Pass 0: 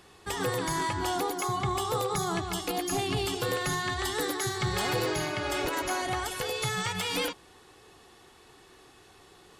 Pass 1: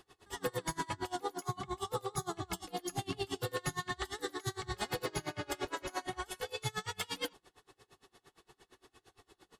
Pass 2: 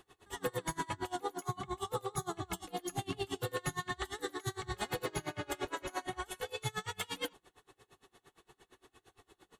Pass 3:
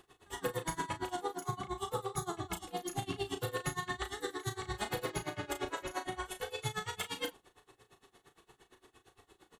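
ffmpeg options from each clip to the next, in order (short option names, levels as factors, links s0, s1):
-af "flanger=delay=2.5:depth=5.4:regen=-57:speed=0.44:shape=sinusoidal,bandreject=f=2400:w=13,aeval=exprs='val(0)*pow(10,-28*(0.5-0.5*cos(2*PI*8.7*n/s))/20)':c=same,volume=1.19"
-af "equalizer=f=5000:t=o:w=0.31:g=-8.5"
-filter_complex "[0:a]asplit=2[s0][s1];[s1]adelay=35,volume=0.355[s2];[s0][s2]amix=inputs=2:normalize=0"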